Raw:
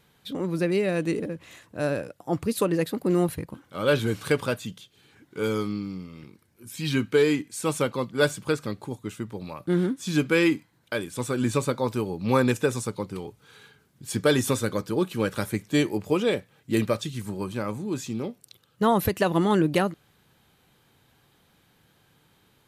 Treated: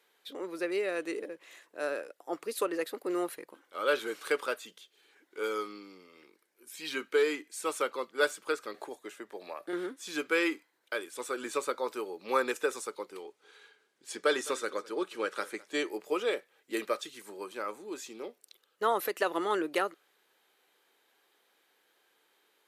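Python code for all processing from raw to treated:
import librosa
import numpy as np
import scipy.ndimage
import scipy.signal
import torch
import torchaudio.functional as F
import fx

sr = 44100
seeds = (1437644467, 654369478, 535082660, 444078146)

y = fx.chain(x, sr, fx.small_body(hz=(670.0, 1700.0), ring_ms=20, db=9),
    fx.band_squash(depth_pct=70), at=(8.74, 9.73))
y = fx.chain(y, sr, fx.lowpass(hz=8800.0, slope=12),
    fx.echo_single(ms=209, db=-21.0), at=(13.22, 15.89))
y = fx.dynamic_eq(y, sr, hz=1300.0, q=4.8, threshold_db=-48.0, ratio=4.0, max_db=7)
y = scipy.signal.sosfilt(scipy.signal.cheby1(3, 1.0, 380.0, 'highpass', fs=sr, output='sos'), y)
y = fx.peak_eq(y, sr, hz=1900.0, db=3.0, octaves=0.58)
y = y * 10.0 ** (-6.0 / 20.0)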